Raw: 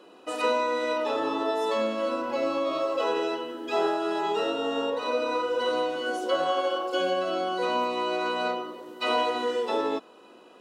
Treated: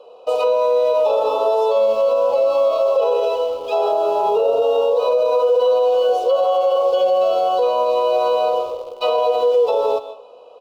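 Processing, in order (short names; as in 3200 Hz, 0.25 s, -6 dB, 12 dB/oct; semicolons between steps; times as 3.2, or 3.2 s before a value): 3.92–4.62 tilt -3 dB/oct; in parallel at -6 dB: bit-crush 6-bit; on the sum: EQ curve 110 Hz 0 dB, 160 Hz -12 dB, 330 Hz -19 dB, 470 Hz +11 dB, 1200 Hz -1 dB, 1800 Hz -26 dB, 2600 Hz -3 dB, 4600 Hz -3 dB, 8300 Hz -12 dB; feedback echo 96 ms, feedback 47%, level -23 dB; on a send at -14 dB: reverb RT60 0.40 s, pre-delay 90 ms; on the sum: maximiser +12.5 dB; gain -8.5 dB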